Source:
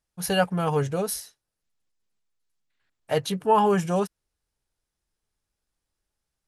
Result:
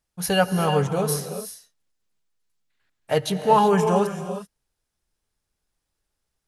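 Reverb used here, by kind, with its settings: non-linear reverb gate 0.41 s rising, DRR 7.5 dB; gain +2.5 dB

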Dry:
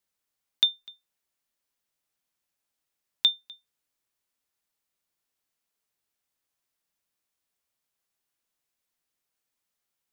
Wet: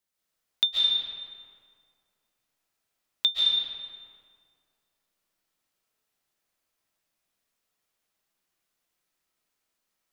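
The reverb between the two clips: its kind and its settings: digital reverb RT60 2.1 s, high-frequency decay 0.6×, pre-delay 0.1 s, DRR -6.5 dB; gain -2 dB

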